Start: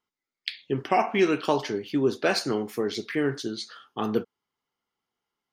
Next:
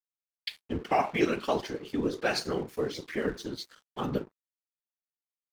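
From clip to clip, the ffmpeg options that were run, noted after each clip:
-af "bandreject=f=50:t=h:w=6,bandreject=f=100:t=h:w=6,bandreject=f=150:t=h:w=6,bandreject=f=200:t=h:w=6,bandreject=f=250:t=h:w=6,bandreject=f=300:t=h:w=6,bandreject=f=350:t=h:w=6,bandreject=f=400:t=h:w=6,afftfilt=real='hypot(re,im)*cos(2*PI*random(0))':imag='hypot(re,im)*sin(2*PI*random(1))':win_size=512:overlap=0.75,aeval=exprs='sgn(val(0))*max(abs(val(0))-0.00251,0)':c=same,volume=2.5dB"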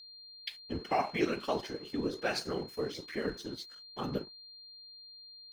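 -af "aeval=exprs='val(0)+0.00562*sin(2*PI*4200*n/s)':c=same,volume=-4.5dB"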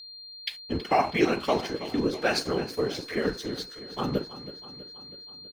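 -af "aecho=1:1:324|648|972|1296|1620|1944:0.188|0.107|0.0612|0.0349|0.0199|0.0113,volume=7.5dB"

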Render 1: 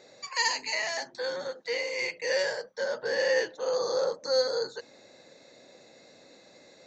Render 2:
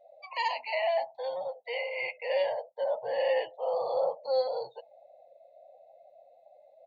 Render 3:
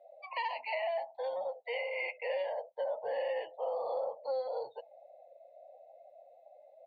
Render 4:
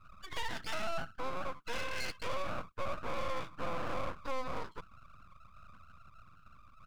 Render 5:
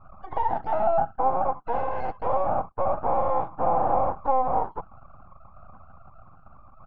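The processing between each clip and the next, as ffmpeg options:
-af "firequalizer=gain_entry='entry(120,0);entry(230,-11);entry(400,-12);entry(670,11);entry(1500,-17);entry(2100,-2);entry(3000,2);entry(5300,-20)':delay=0.05:min_phase=1,afftdn=nr=24:nf=-45"
-filter_complex "[0:a]acrossover=split=210 3800:gain=0.178 1 0.0891[a][b][c];[a][b][c]amix=inputs=3:normalize=0,acompressor=threshold=-32dB:ratio=6"
-af "aeval=exprs='(tanh(44.7*val(0)+0.55)-tanh(0.55))/44.7':c=same,aeval=exprs='abs(val(0))':c=same,volume=4.5dB"
-af "lowpass=f=800:t=q:w=9.3,volume=8.5dB"

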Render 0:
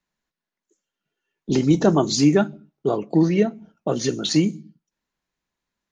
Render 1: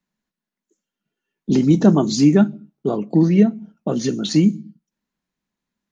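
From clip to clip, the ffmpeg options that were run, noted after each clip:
-af "equalizer=f=210:t=o:w=0.88:g=10.5,volume=-2dB"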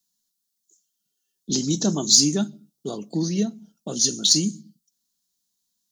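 -af "aexciter=amount=11.6:drive=6.6:freq=3.5k,volume=-10dB"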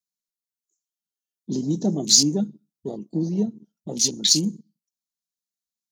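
-af "afwtdn=0.0447"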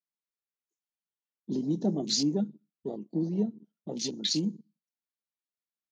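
-af "highpass=160,lowpass=3.2k,volume=-4dB"

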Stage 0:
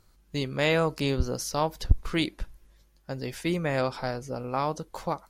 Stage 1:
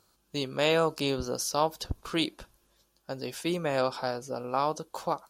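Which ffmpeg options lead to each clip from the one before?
-af "highpass=f=370:p=1,equalizer=f=2k:w=3.7:g=-11,volume=2dB"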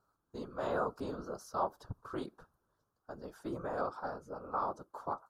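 -af "afftfilt=real='hypot(re,im)*cos(2*PI*random(0))':imag='hypot(re,im)*sin(2*PI*random(1))':win_size=512:overlap=0.75,highshelf=f=1.8k:t=q:w=3:g=-10.5,volume=-4.5dB"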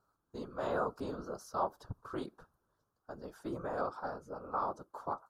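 -af anull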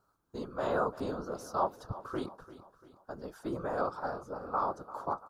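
-af "aecho=1:1:343|686|1029|1372:0.158|0.0745|0.035|0.0165,volume=3.5dB"

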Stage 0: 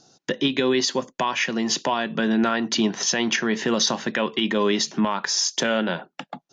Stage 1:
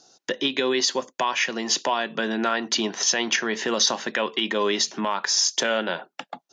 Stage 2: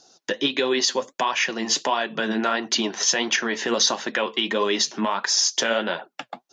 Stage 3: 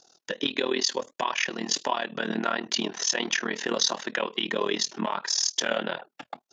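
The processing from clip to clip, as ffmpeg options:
-af "bass=f=250:g=-13,treble=f=4k:g=2"
-af "flanger=delay=1:depth=9.1:regen=50:speed=1.5:shape=triangular,volume=5dB"
-af "tremolo=f=39:d=0.919,volume=-1dB"

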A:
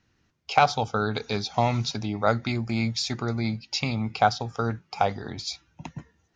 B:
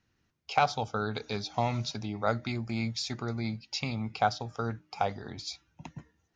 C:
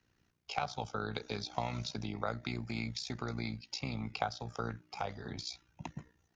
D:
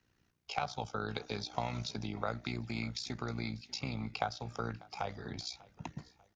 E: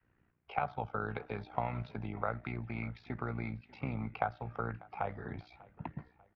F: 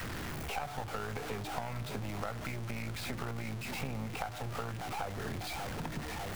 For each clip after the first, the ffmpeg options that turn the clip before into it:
-af "bandreject=f=306.6:t=h:w=4,bandreject=f=613.2:t=h:w=4,volume=-6dB"
-filter_complex "[0:a]acrossover=split=96|1000[a][b][c];[a]acompressor=threshold=-51dB:ratio=4[d];[b]acompressor=threshold=-38dB:ratio=4[e];[c]acompressor=threshold=-40dB:ratio=4[f];[d][e][f]amix=inputs=3:normalize=0,tremolo=f=60:d=0.75,volume=3.5dB"
-af "aecho=1:1:594|1188|1782:0.0794|0.0326|0.0134"
-af "adynamicequalizer=threshold=0.00251:dfrequency=260:dqfactor=0.93:tfrequency=260:tqfactor=0.93:attack=5:release=100:ratio=0.375:range=2.5:mode=cutabove:tftype=bell,lowpass=f=2.2k:w=0.5412,lowpass=f=2.2k:w=1.3066,volume=2dB"
-af "aeval=exprs='val(0)+0.5*0.0211*sgn(val(0))':c=same,acompressor=threshold=-37dB:ratio=3,aeval=exprs='0.075*(cos(1*acos(clip(val(0)/0.075,-1,1)))-cos(1*PI/2))+0.00944*(cos(6*acos(clip(val(0)/0.075,-1,1)))-cos(6*PI/2))':c=same"

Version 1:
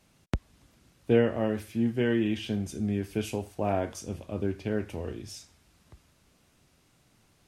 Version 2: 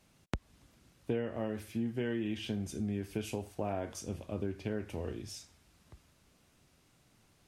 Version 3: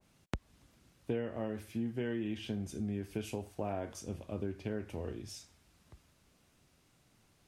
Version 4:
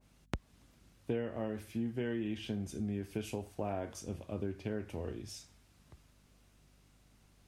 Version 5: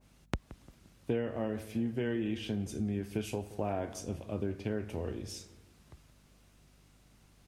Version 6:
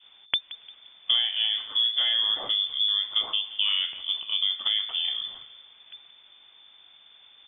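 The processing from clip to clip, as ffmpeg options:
-af "acompressor=threshold=-29dB:ratio=4,volume=-2.5dB"
-af "adynamicequalizer=threshold=0.00251:dfrequency=1800:dqfactor=0.7:tfrequency=1800:tqfactor=0.7:attack=5:release=100:ratio=0.375:range=1.5:mode=cutabove:tftype=highshelf,volume=-1.5dB"
-af "aeval=exprs='val(0)+0.000501*(sin(2*PI*50*n/s)+sin(2*PI*2*50*n/s)/2+sin(2*PI*3*50*n/s)/3+sin(2*PI*4*50*n/s)/4+sin(2*PI*5*50*n/s)/5)':c=same"
-filter_complex "[0:a]asplit=2[a][b];[b]adelay=174,lowpass=f=1.1k:p=1,volume=-15dB,asplit=2[c][d];[d]adelay=174,lowpass=f=1.1k:p=1,volume=0.48,asplit=2[e][f];[f]adelay=174,lowpass=f=1.1k:p=1,volume=0.48,asplit=2[g][h];[h]adelay=174,lowpass=f=1.1k:p=1,volume=0.48[i];[a][c][e][g][i]amix=inputs=5:normalize=0,volume=3dB"
-af "lowpass=f=3.1k:t=q:w=0.5098,lowpass=f=3.1k:t=q:w=0.6013,lowpass=f=3.1k:t=q:w=0.9,lowpass=f=3.1k:t=q:w=2.563,afreqshift=-3600,volume=8.5dB"

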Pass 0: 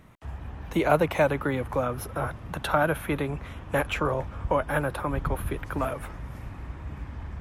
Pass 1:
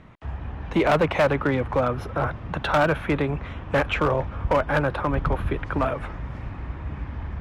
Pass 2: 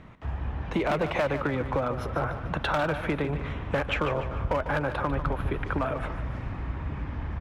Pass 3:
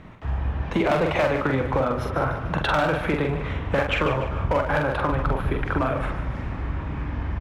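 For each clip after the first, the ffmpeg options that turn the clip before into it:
-af "lowpass=3.8k,asoftclip=type=hard:threshold=-19.5dB,volume=5dB"
-af "acompressor=threshold=-24dB:ratio=6,aecho=1:1:148|296|444|592|740:0.299|0.131|0.0578|0.0254|0.0112"
-filter_complex "[0:a]asplit=2[a][b];[b]adelay=45,volume=-4dB[c];[a][c]amix=inputs=2:normalize=0,volume=3.5dB"

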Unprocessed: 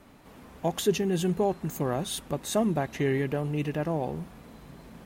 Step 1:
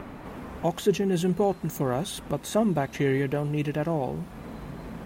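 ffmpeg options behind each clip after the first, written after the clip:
-filter_complex "[0:a]acrossover=split=2400[a][b];[a]acompressor=mode=upward:threshold=-31dB:ratio=2.5[c];[b]alimiter=level_in=5dB:limit=-24dB:level=0:latency=1:release=240,volume=-5dB[d];[c][d]amix=inputs=2:normalize=0,volume=2dB"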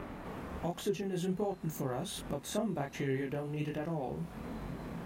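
-af "acompressor=threshold=-34dB:ratio=2,flanger=delay=22.5:depth=7.5:speed=1.3"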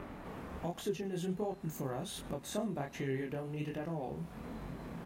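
-af "aecho=1:1:104:0.075,volume=-2.5dB"

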